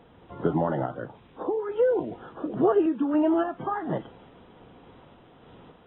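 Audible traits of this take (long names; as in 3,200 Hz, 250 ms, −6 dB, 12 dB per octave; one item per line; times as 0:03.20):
a quantiser's noise floor 10 bits, dither triangular
sample-and-hold tremolo
AAC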